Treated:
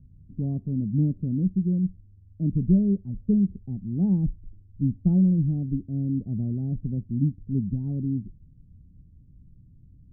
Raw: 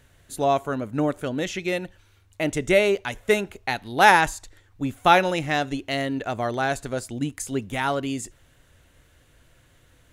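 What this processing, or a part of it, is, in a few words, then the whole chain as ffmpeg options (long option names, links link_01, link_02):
the neighbour's flat through the wall: -af "lowpass=frequency=220:width=0.5412,lowpass=frequency=220:width=1.3066,equalizer=frequency=190:width_type=o:width=0.42:gain=8,volume=7dB"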